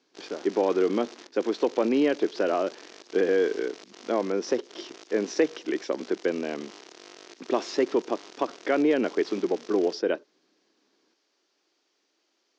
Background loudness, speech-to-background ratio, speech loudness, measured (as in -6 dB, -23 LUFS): -47.0 LUFS, 20.0 dB, -27.0 LUFS